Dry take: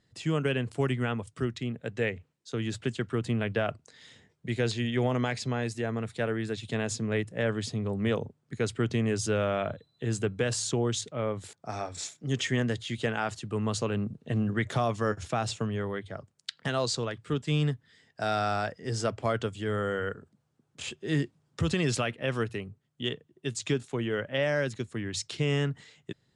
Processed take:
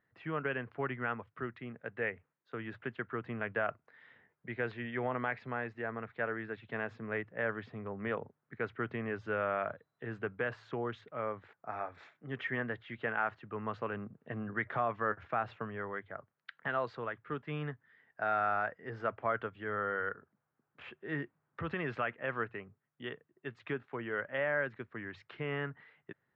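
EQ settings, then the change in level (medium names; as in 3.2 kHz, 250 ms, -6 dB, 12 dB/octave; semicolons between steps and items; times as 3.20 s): low-pass 1.7 kHz 24 dB/octave; tilt shelf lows -9 dB, about 910 Hz; bass shelf 110 Hz -8 dB; -2.0 dB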